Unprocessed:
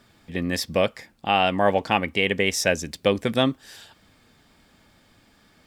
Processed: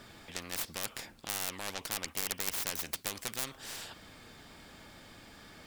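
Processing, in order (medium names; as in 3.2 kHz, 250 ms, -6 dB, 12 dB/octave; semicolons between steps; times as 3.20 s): tracing distortion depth 0.44 ms; spectrum-flattening compressor 4:1; trim -5 dB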